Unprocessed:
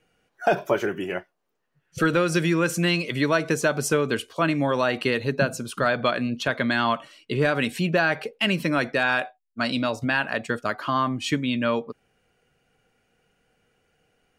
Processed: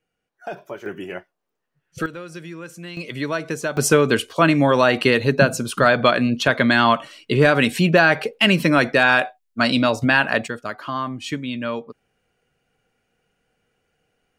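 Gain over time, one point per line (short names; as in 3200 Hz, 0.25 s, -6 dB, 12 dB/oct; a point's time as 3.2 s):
-11 dB
from 0.86 s -2.5 dB
from 2.06 s -13.5 dB
from 2.97 s -3 dB
from 3.77 s +7 dB
from 10.48 s -2.5 dB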